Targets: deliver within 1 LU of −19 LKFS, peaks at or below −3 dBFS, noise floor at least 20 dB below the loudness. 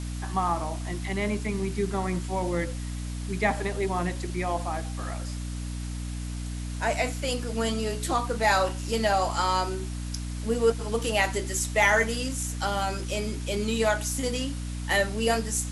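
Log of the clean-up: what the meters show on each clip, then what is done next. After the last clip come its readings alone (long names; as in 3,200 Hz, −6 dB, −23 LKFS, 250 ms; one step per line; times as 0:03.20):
mains hum 60 Hz; hum harmonics up to 300 Hz; level of the hum −31 dBFS; background noise floor −33 dBFS; target noise floor −48 dBFS; integrated loudness −28.0 LKFS; sample peak −8.5 dBFS; target loudness −19.0 LKFS
→ mains-hum notches 60/120/180/240/300 Hz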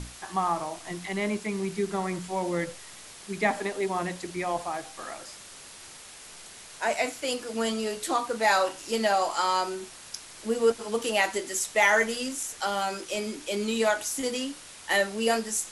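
mains hum none found; background noise floor −47 dBFS; target noise floor −48 dBFS
→ broadband denoise 6 dB, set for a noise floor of −47 dBFS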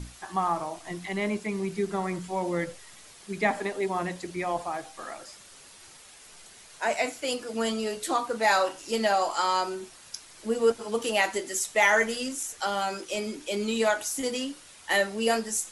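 background noise floor −51 dBFS; integrated loudness −28.0 LKFS; sample peak −9.0 dBFS; target loudness −19.0 LKFS
→ level +9 dB
brickwall limiter −3 dBFS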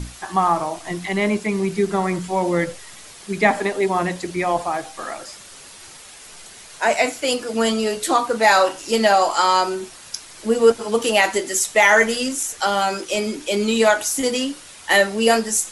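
integrated loudness −19.5 LKFS; sample peak −3.0 dBFS; background noise floor −42 dBFS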